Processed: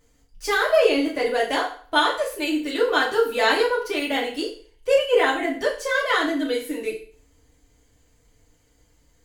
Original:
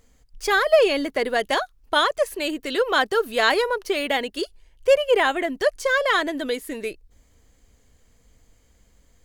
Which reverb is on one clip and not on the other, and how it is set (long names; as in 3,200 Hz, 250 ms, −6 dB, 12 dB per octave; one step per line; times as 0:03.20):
feedback delay network reverb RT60 0.46 s, low-frequency decay 0.9×, high-frequency decay 0.95×, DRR −5 dB
level −6.5 dB